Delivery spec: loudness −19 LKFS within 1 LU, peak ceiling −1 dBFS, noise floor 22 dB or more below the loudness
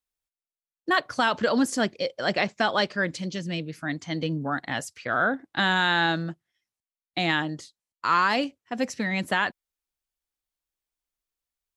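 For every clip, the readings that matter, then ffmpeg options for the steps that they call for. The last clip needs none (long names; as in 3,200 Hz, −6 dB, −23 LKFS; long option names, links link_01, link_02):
integrated loudness −26.0 LKFS; sample peak −11.0 dBFS; target loudness −19.0 LKFS
→ -af "volume=7dB"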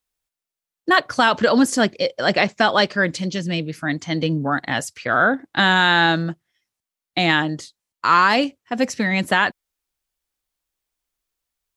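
integrated loudness −19.0 LKFS; sample peak −4.0 dBFS; background noise floor −88 dBFS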